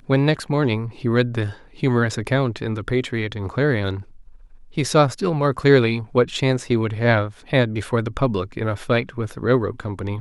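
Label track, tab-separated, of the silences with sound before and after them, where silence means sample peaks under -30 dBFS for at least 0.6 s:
4.010000	4.770000	silence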